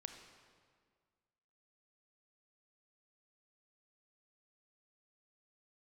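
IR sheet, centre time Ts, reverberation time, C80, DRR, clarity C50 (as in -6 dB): 34 ms, 1.8 s, 8.0 dB, 5.5 dB, 6.5 dB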